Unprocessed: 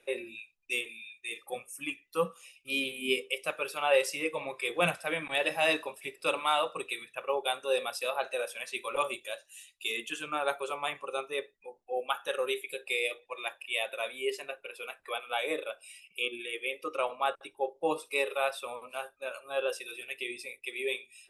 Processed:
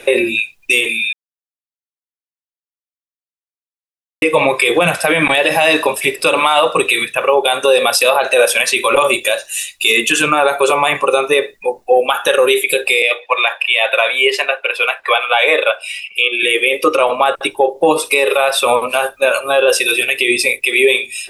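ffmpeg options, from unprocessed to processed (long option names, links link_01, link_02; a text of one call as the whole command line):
ffmpeg -i in.wav -filter_complex "[0:a]asettb=1/sr,asplit=3[link_01][link_02][link_03];[link_01]atrim=end=9.114[link_04];[link_02]atrim=start=9.11:end=11.95,asetpts=PTS-STARTPTS,afade=type=in:duration=0.004:curve=qsin,afade=type=out:start_time=2.836:duration=0.004:curve=qsin,bandreject=frequency=3200:width=12[link_05];[link_03]atrim=start=11.946[link_06];[link_04][link_05]acrossfade=duration=0.004:curve1=hsin:curve2=qsin[link_07];[link_07][link_06]acrossfade=duration=0.004:curve1=qsin:curve2=hsin,asettb=1/sr,asplit=3[link_08][link_09][link_10];[link_08]atrim=end=13.024[link_11];[link_09]atrim=start=13.02:end=16.43,asetpts=PTS-STARTPTS,afade=type=in:duration=0.004:curve=qsin,afade=type=out:start_time=3.406:duration=0.004:curve=qsin,acrossover=split=510 4300:gain=0.0708 1 0.224[link_12][link_13][link_14];[link_12][link_13][link_14]amix=inputs=3:normalize=0[link_15];[link_10]atrim=start=16.426[link_16];[link_11][link_15]acrossfade=duration=0.004:curve1=hsin:curve2=qsin[link_17];[link_17][link_16]acrossfade=duration=0.004:curve1=qsin:curve2=hsin,asplit=3[link_18][link_19][link_20];[link_18]atrim=end=1.13,asetpts=PTS-STARTPTS,afade=type=out:start_time=1.126:duration=0.004:curve=hsin[link_21];[link_19]atrim=start=1.13:end=4.22,asetpts=PTS-STARTPTS,volume=0[link_22];[link_20]atrim=start=4.22,asetpts=PTS-STARTPTS,afade=type=in:duration=0.004:curve=hsin[link_23];[link_21][link_22][link_23]concat=n=3:v=0:a=1,bandreject=frequency=1300:width=16,acompressor=threshold=-31dB:ratio=6,alimiter=level_in=29.5dB:limit=-1dB:release=50:level=0:latency=1,volume=-1dB" out.wav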